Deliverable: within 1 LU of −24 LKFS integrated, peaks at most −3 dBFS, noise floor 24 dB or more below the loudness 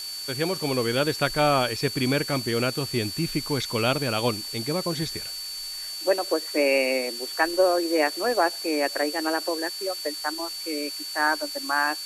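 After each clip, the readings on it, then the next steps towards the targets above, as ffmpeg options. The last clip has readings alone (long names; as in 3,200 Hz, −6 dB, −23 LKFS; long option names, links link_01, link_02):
interfering tone 4,500 Hz; level of the tone −33 dBFS; background noise floor −35 dBFS; target noise floor −50 dBFS; integrated loudness −25.5 LKFS; sample peak −8.0 dBFS; target loudness −24.0 LKFS
→ -af "bandreject=frequency=4500:width=30"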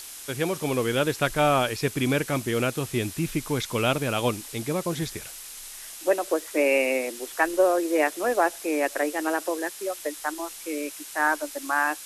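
interfering tone none found; background noise floor −41 dBFS; target noise floor −50 dBFS
→ -af "afftdn=noise_reduction=9:noise_floor=-41"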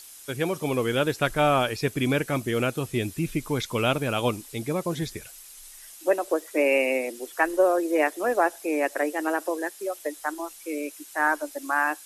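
background noise floor −46 dBFS; target noise floor −50 dBFS
→ -af "afftdn=noise_reduction=6:noise_floor=-46"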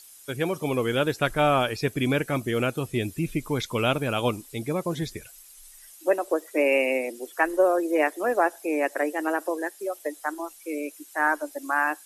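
background noise floor −50 dBFS; integrated loudness −26.0 LKFS; sample peak −8.5 dBFS; target loudness −24.0 LKFS
→ -af "volume=2dB"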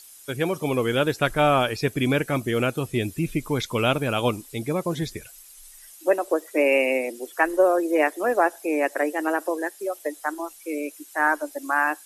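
integrated loudness −24.0 LKFS; sample peak −6.5 dBFS; background noise floor −48 dBFS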